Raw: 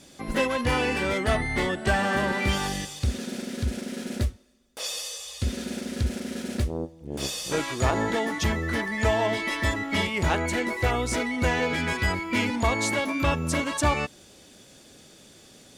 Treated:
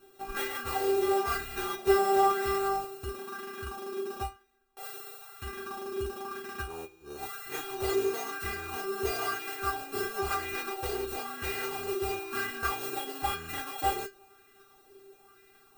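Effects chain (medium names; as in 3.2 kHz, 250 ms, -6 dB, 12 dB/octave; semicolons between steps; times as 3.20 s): sorted samples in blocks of 32 samples; inharmonic resonator 390 Hz, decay 0.25 s, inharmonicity 0.002; sweeping bell 1 Hz 380–2000 Hz +10 dB; trim +8 dB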